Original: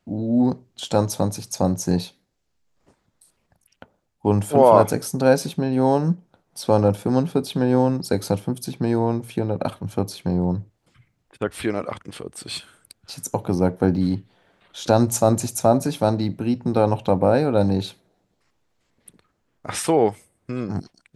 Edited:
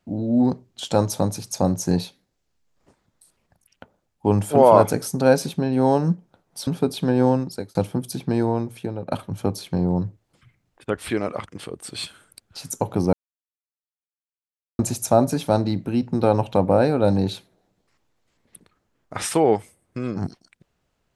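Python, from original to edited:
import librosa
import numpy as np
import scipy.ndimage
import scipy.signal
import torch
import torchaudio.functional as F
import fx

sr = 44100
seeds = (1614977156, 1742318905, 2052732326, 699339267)

y = fx.edit(x, sr, fx.cut(start_s=6.67, length_s=0.53),
    fx.fade_out_span(start_s=7.85, length_s=0.43),
    fx.fade_out_to(start_s=8.88, length_s=0.76, floor_db=-9.0),
    fx.silence(start_s=13.66, length_s=1.66), tone=tone)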